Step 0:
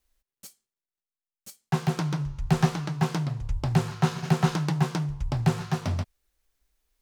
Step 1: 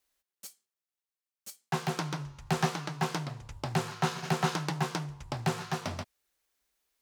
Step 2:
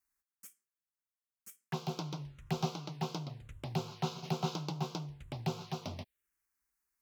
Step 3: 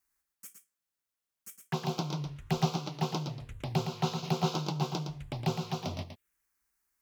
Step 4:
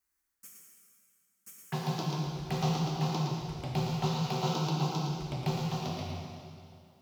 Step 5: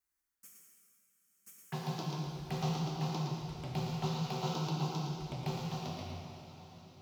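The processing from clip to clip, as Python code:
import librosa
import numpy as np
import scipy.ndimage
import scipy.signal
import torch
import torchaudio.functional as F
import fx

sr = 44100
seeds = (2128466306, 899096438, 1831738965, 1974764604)

y1 = fx.highpass(x, sr, hz=410.0, slope=6)
y2 = fx.env_phaser(y1, sr, low_hz=570.0, high_hz=1800.0, full_db=-30.5)
y2 = y2 * librosa.db_to_amplitude(-4.5)
y3 = y2 + 10.0 ** (-7.5 / 20.0) * np.pad(y2, (int(113 * sr / 1000.0), 0))[:len(y2)]
y3 = y3 * librosa.db_to_amplitude(4.5)
y4 = fx.rev_plate(y3, sr, seeds[0], rt60_s=2.4, hf_ratio=0.9, predelay_ms=0, drr_db=-2.0)
y4 = y4 * librosa.db_to_amplitude(-3.5)
y5 = fx.echo_diffused(y4, sr, ms=909, feedback_pct=42, wet_db=-15.5)
y5 = y5 * librosa.db_to_amplitude(-5.0)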